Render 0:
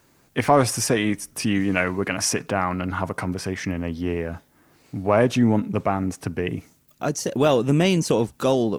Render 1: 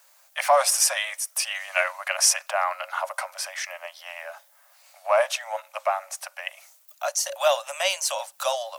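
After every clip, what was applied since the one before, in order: Chebyshev high-pass 550 Hz, order 10; high shelf 5100 Hz +8.5 dB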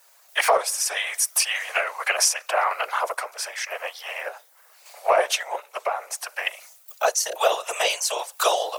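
compressor 4:1, threshold -24 dBFS, peak gain reduction 9 dB; whisperiser; random-step tremolo; gain +8 dB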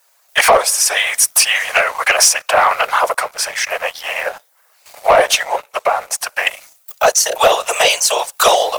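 sample leveller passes 2; gain +3.5 dB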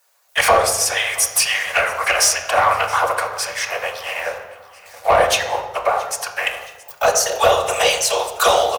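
feedback echo 0.673 s, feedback 51%, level -21.5 dB; on a send at -2.5 dB: reverb RT60 1.1 s, pre-delay 3 ms; on the sum: gain -5 dB

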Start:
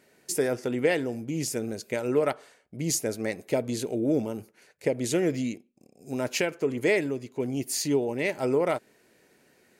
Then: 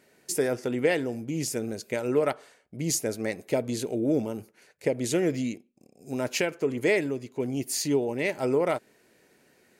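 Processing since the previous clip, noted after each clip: nothing audible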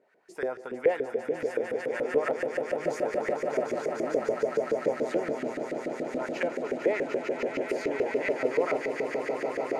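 swelling echo 0.15 s, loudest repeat 8, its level -8 dB; LFO band-pass saw up 7 Hz 440–1800 Hz; gain +3 dB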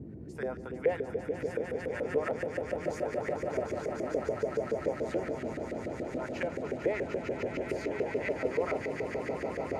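band noise 61–360 Hz -40 dBFS; gain -4.5 dB

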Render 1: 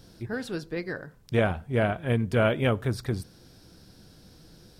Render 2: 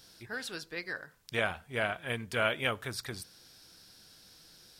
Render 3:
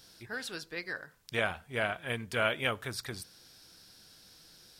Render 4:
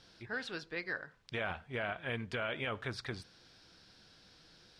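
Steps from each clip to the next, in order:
tilt shelf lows -9.5 dB, about 730 Hz; gain -6.5 dB
nothing audible
LPF 3800 Hz 12 dB/oct; limiter -25.5 dBFS, peak gain reduction 10.5 dB

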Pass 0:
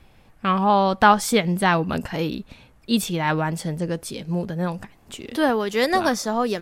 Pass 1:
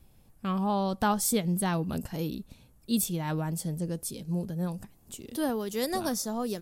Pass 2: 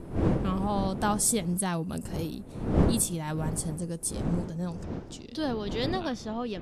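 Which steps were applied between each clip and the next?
EQ curve 170 Hz 0 dB, 2100 Hz -12 dB, 12000 Hz +9 dB; gain -5 dB
wind noise 280 Hz -31 dBFS; low-pass sweep 9500 Hz -> 3000 Hz, 4.02–6.14; gain -1.5 dB

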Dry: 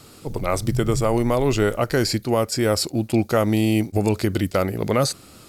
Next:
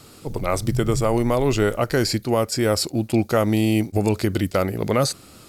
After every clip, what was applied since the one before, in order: nothing audible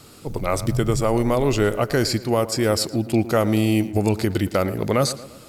tape echo 0.113 s, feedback 54%, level -13 dB, low-pass 2100 Hz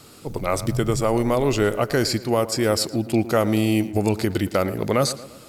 low shelf 110 Hz -4.5 dB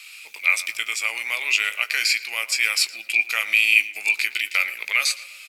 resonant high-pass 2400 Hz, resonance Q 11; doubler 18 ms -11 dB; gain +1.5 dB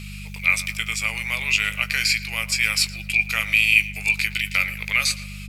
buzz 50 Hz, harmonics 4, -36 dBFS -3 dB/oct

